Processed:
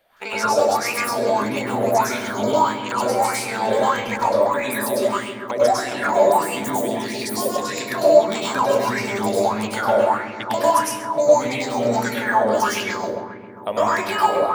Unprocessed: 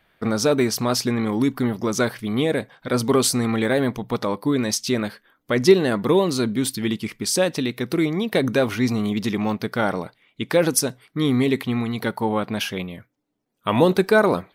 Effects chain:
pitch shifter gated in a rhythm +11.5 semitones, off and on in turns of 162 ms
bass and treble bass −6 dB, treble +10 dB
downward compressor, threshold −24 dBFS, peak gain reduction 17.5 dB
feedback echo with a low-pass in the loop 134 ms, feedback 79%, low-pass 2,000 Hz, level −5 dB
dense smooth reverb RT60 0.65 s, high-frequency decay 0.55×, pre-delay 90 ms, DRR −6 dB
auto-filter bell 1.6 Hz 540–2,600 Hz +17 dB
level −7 dB

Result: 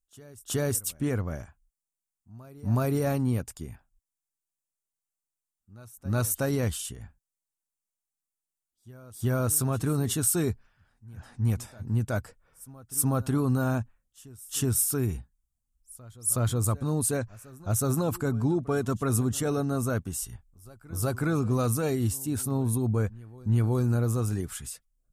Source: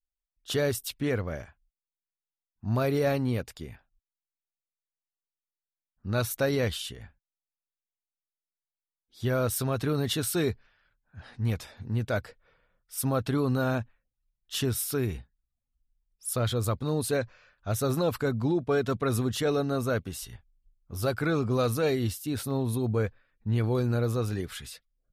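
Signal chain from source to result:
octave-band graphic EQ 500/2,000/4,000/8,000 Hz −7/−7/−11/+8 dB
backwards echo 370 ms −21.5 dB
level +3 dB

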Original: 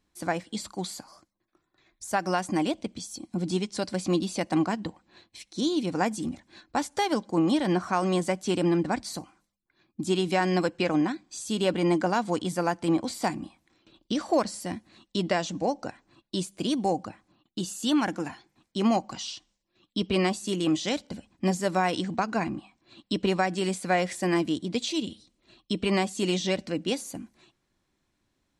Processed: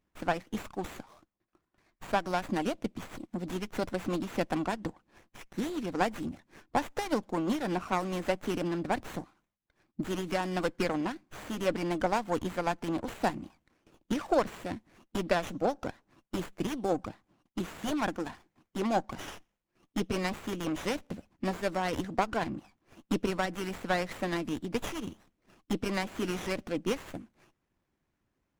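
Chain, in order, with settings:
harmonic and percussive parts rebalanced harmonic −9 dB
windowed peak hold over 9 samples

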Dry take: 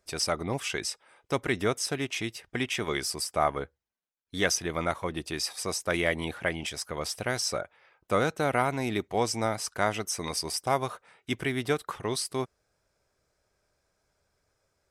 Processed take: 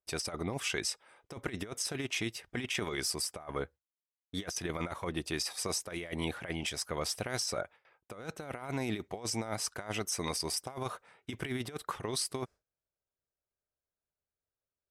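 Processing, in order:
noise gate with hold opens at −51 dBFS
compressor whose output falls as the input rises −31 dBFS, ratio −0.5
one half of a high-frequency compander decoder only
level −4 dB

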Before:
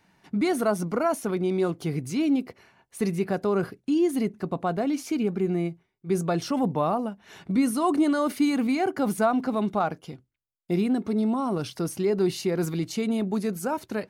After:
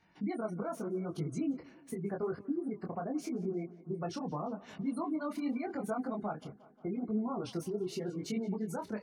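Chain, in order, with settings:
running median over 3 samples
gate on every frequency bin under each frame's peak −25 dB strong
downward compressor 6 to 1, threshold −29 dBFS, peak gain reduction 11 dB
phase-vocoder stretch with locked phases 0.64×
on a send: tape delay 176 ms, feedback 70%, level −19.5 dB, low-pass 4,600 Hz
on the sum: micro pitch shift up and down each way 29 cents

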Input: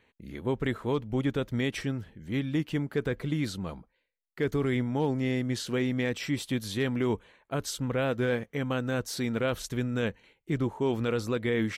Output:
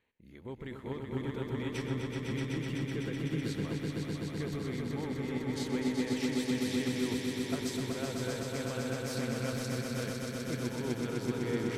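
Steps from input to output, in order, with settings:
brickwall limiter −24 dBFS, peak gain reduction 6.5 dB
on a send: echo that builds up and dies away 126 ms, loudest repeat 5, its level −4.5 dB
on the sum: expander for the loud parts 1.5 to 1, over −39 dBFS
level −4.5 dB

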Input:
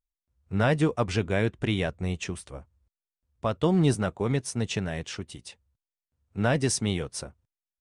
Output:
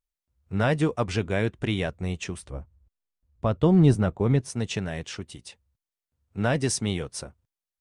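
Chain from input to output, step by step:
0:02.42–0:04.50: spectral tilt −2 dB per octave

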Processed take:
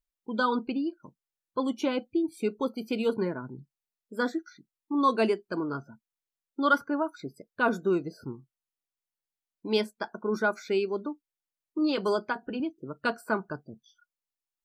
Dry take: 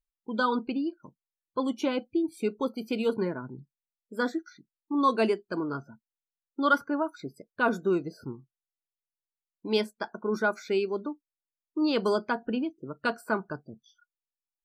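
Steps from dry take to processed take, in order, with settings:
0:11.78–0:12.60: notch comb filter 230 Hz

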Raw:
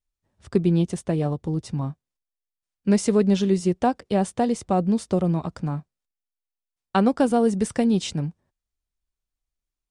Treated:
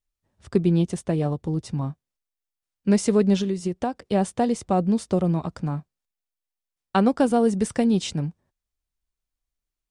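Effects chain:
0:03.39–0:04.00: downward compressor, threshold −22 dBFS, peak gain reduction 7.5 dB

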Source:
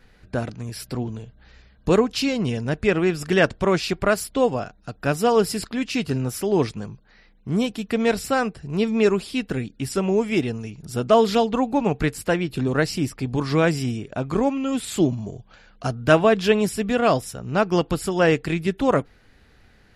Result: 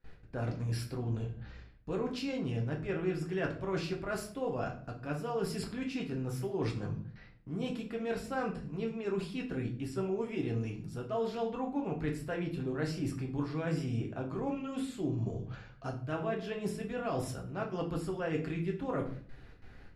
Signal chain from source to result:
noise gate with hold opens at −44 dBFS
high-shelf EQ 3,600 Hz −9.5 dB
reversed playback
downward compressor 5 to 1, threshold −34 dBFS, peak gain reduction 20.5 dB
reversed playback
rectangular room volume 49 cubic metres, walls mixed, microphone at 0.59 metres
level −2.5 dB

